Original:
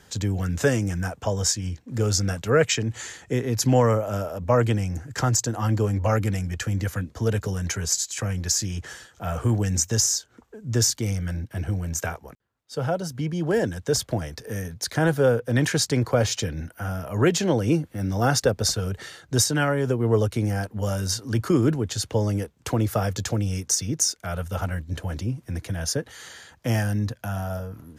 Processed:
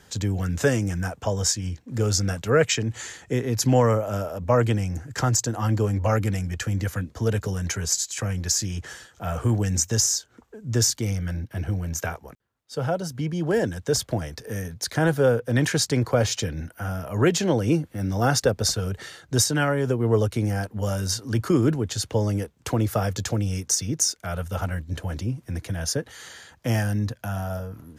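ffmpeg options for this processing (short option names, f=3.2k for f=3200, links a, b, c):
-filter_complex "[0:a]asettb=1/sr,asplit=3[a][b][c];[a]atrim=end=11.054[d];[b]atrim=start=11.05:end=12.12,asetpts=PTS-STARTPTS,afade=t=in:d=0.004:c=qsin,afade=t=out:st=1.066:d=0.004:c=qsin,equalizer=f=8.1k:t=o:w=0.39:g=-5.5[e];[c]atrim=start=12.116[f];[d][e]acrossfade=d=0.004:c1=hsin:c2=qsin[g];[g][f]acrossfade=d=0.004:c1=qsin:c2=hsin"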